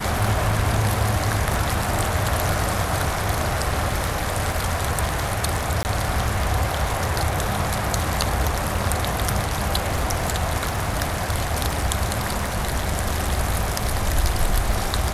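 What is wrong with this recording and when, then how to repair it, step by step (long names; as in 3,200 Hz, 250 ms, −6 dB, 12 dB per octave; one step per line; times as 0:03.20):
surface crackle 40 per second −28 dBFS
0:05.83–0:05.85: drop-out 19 ms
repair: click removal
repair the gap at 0:05.83, 19 ms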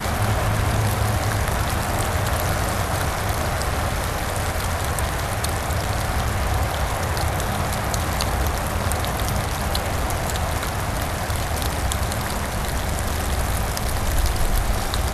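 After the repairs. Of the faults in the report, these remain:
none of them is left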